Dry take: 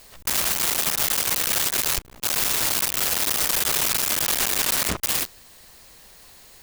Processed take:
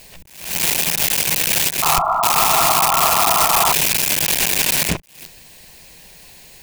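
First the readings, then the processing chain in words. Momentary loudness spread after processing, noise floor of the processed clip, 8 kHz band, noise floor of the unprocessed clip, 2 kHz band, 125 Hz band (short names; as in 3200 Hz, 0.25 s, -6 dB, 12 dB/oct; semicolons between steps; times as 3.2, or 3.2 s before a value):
5 LU, -44 dBFS, +4.0 dB, -49 dBFS, +6.0 dB, +8.0 dB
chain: thirty-one-band EQ 160 Hz +9 dB, 1250 Hz -11 dB, 2500 Hz +6 dB; painted sound noise, 1.82–3.73, 630–1400 Hz -23 dBFS; attack slew limiter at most 100 dB/s; gain +5 dB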